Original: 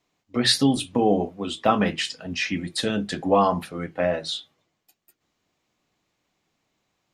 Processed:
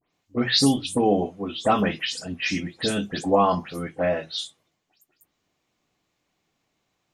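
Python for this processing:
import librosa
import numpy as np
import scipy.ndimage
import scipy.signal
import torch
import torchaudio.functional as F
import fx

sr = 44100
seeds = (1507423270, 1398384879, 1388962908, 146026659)

y = fx.spec_delay(x, sr, highs='late', ms=127)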